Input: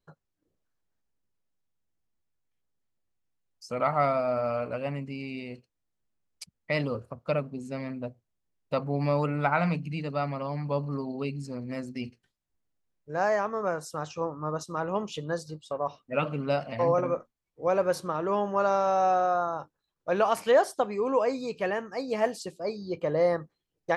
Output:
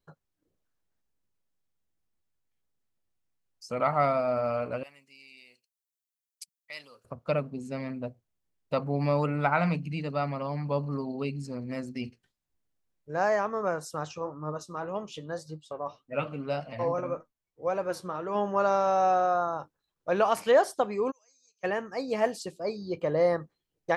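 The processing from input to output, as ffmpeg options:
-filter_complex "[0:a]asettb=1/sr,asplit=3[s0][s1][s2];[s0]atrim=end=4.834[s3];[s1]atrim=start=4.83:end=7.05,asetpts=PTS-STARTPTS,afade=t=in:d=0.004:c=qsin,afade=t=out:st=2.216:d=0.004:c=qsin,aderivative[s4];[s2]atrim=start=7.046[s5];[s3][s4]acrossfade=d=0.004:c1=hsin:c2=qsin[s6];[s6][s5]acrossfade=d=0.004:c1=qsin:c2=hsin,asplit=3[s7][s8][s9];[s7]afade=t=out:st=14.17:d=0.02[s10];[s8]flanger=delay=6.2:depth=4.6:regen=58:speed=1.8:shape=sinusoidal,afade=t=in:st=14.17:d=0.02,afade=t=out:st=18.34:d=0.02[s11];[s9]afade=t=in:st=18.34:d=0.02[s12];[s10][s11][s12]amix=inputs=3:normalize=0,asplit=3[s13][s14][s15];[s13]afade=t=out:st=21.1:d=0.02[s16];[s14]bandpass=f=6200:t=q:w=19,afade=t=in:st=21.1:d=0.02,afade=t=out:st=21.63:d=0.02[s17];[s15]afade=t=in:st=21.63:d=0.02[s18];[s16][s17][s18]amix=inputs=3:normalize=0"

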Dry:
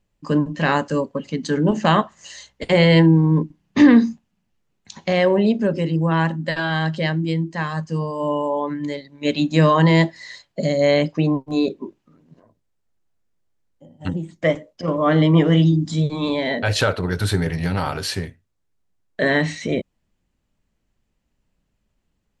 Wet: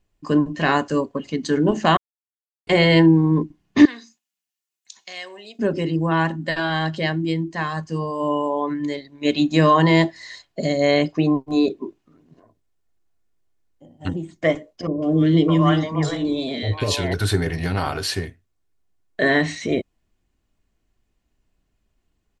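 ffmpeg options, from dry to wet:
-filter_complex "[0:a]asettb=1/sr,asplit=3[s0][s1][s2];[s0]atrim=end=3.854[s3];[s1]atrim=start=3.85:end=5.59,asetpts=PTS-STARTPTS,afade=t=in:d=0.004:c=qsin,afade=t=out:st=1.736:d=0.004:c=qsin,aderivative[s4];[s2]atrim=start=5.586[s5];[s3][s4]acrossfade=d=0.004:c1=hsin:c2=qsin[s6];[s6][s5]acrossfade=d=0.004:c1=qsin:c2=hsin,asettb=1/sr,asplit=3[s7][s8][s9];[s7]atrim=end=14.874[s10];[s8]atrim=start=14.87:end=17.14,asetpts=PTS-STARTPTS,afade=t=in:d=0.004:c=qsin,afade=t=out:st=2.266:d=0.004:c=qsin,acrossover=split=550|2200[s11][s12][s13];[s13]adelay=150[s14];[s12]adelay=610[s15];[s11][s15][s14]amix=inputs=3:normalize=0,atrim=end_sample=100107[s16];[s9]atrim=start=17.136[s17];[s10][s16]acrossfade=d=0.004:c1=hsin:c2=qsin[s18];[s18][s17]acrossfade=d=0.004:c1=qsin:c2=hsin,asplit=3[s19][s20][s21];[s19]atrim=end=1.97,asetpts=PTS-STARTPTS,afade=t=out:st=1.966:d=0.004:c=hsin[s22];[s20]atrim=start=1.97:end=2.67,asetpts=PTS-STARTPTS,volume=0[s23];[s21]atrim=start=2.67,asetpts=PTS-STARTPTS,afade=t=in:d=0.004:c=hsin[s24];[s22][s23][s24]concat=n=3:v=0:a=1,aecho=1:1:2.8:0.36"

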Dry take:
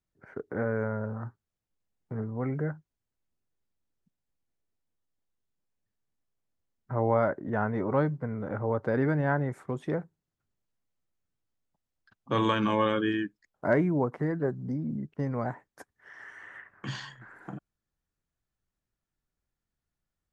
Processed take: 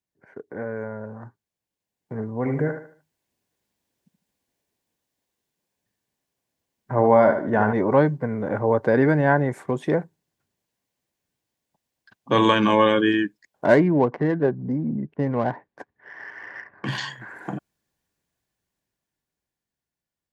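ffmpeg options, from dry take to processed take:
-filter_complex "[0:a]asettb=1/sr,asplit=3[s0][s1][s2];[s0]atrim=end=2.384[s3];[s1]atrim=start=2.38:end=7.73,asetpts=PTS-STARTPTS,afade=t=in:d=0.004:c=qsin,afade=t=out:st=5.346:d=0.004:c=qsin,aecho=1:1:75|150|225|300:0.398|0.131|0.0434|0.0143,atrim=end_sample=235935[s4];[s2]atrim=start=7.726[s5];[s3][s4]acrossfade=d=0.004:c1=hsin:c2=qsin[s6];[s6][s5]acrossfade=d=0.004:c1=qsin:c2=hsin,asettb=1/sr,asplit=3[s7][s8][s9];[s7]atrim=end=13.654[s10];[s8]atrim=start=13.65:end=16.98,asetpts=PTS-STARTPTS,afade=t=in:d=0.004:c=qsin,afade=t=out:st=3.326:d=0.004:c=qsin,adynamicsmooth=sensitivity=5:basefreq=2100[s11];[s9]atrim=start=16.976[s12];[s10][s11]acrossfade=d=0.004:c1=hsin:c2=qsin[s13];[s13][s12]acrossfade=d=0.004:c1=qsin:c2=hsin,dynaudnorm=f=390:g=13:m=5.01,highpass=f=200:p=1,bandreject=f=1300:w=5.2"

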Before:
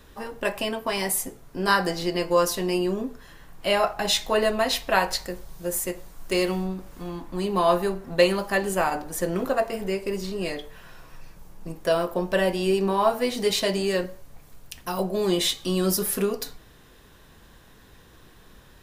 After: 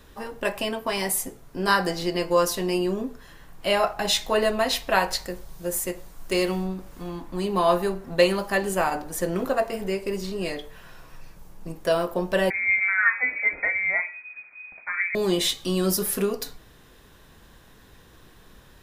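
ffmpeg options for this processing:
-filter_complex "[0:a]asettb=1/sr,asplit=3[s0][s1][s2];[s0]atrim=end=12.504[s3];[s1]atrim=start=12.5:end=15.15,asetpts=PTS-STARTPTS,afade=t=in:d=0.004:c=qsin,afade=t=out:st=2.646:d=0.004:c=qsin,lowpass=f=2100:t=q:w=0.5098,lowpass=f=2100:t=q:w=0.6013,lowpass=f=2100:t=q:w=0.9,lowpass=f=2100:t=q:w=2.563,afreqshift=-2500[s4];[s2]atrim=start=15.146[s5];[s3][s4]acrossfade=d=0.004:c1=hsin:c2=qsin[s6];[s6][s5]acrossfade=d=0.004:c1=qsin:c2=hsin"

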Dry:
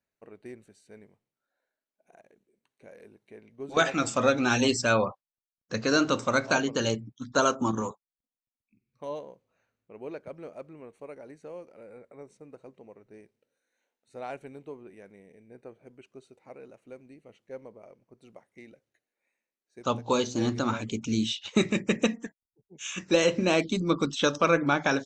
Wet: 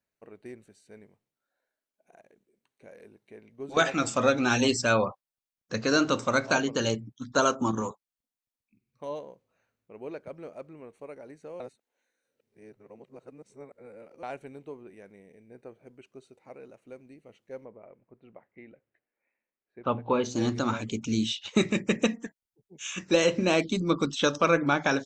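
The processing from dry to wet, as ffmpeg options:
-filter_complex "[0:a]asplit=3[s0][s1][s2];[s0]afade=t=out:st=17.64:d=0.02[s3];[s1]lowpass=f=2600:w=0.5412,lowpass=f=2600:w=1.3066,afade=t=in:st=17.64:d=0.02,afade=t=out:st=20.23:d=0.02[s4];[s2]afade=t=in:st=20.23:d=0.02[s5];[s3][s4][s5]amix=inputs=3:normalize=0,asplit=3[s6][s7][s8];[s6]atrim=end=11.602[s9];[s7]atrim=start=11.598:end=14.232,asetpts=PTS-STARTPTS,areverse[s10];[s8]atrim=start=14.228[s11];[s9][s10]acrossfade=d=0.004:c1=hsin:c2=hsin[s12];[s12][s11]acrossfade=d=0.004:c1=hsin:c2=hsin"

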